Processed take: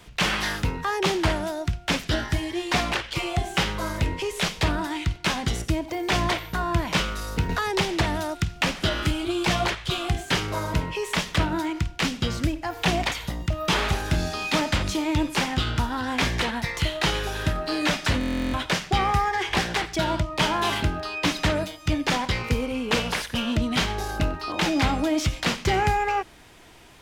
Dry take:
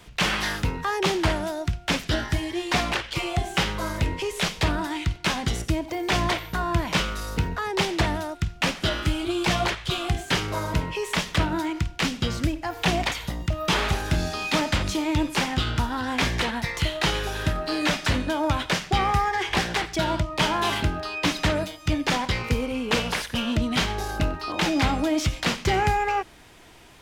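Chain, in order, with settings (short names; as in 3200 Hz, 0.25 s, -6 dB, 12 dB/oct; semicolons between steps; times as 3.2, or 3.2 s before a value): stuck buffer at 18.19, samples 1024, times 14; 7.49–9.11 three-band squash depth 70%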